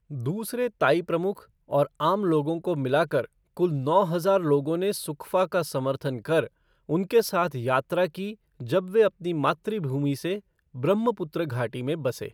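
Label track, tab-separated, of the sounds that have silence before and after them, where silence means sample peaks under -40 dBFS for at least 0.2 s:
1.700000	3.250000	sound
3.570000	6.470000	sound
6.890000	8.340000	sound
8.600000	10.390000	sound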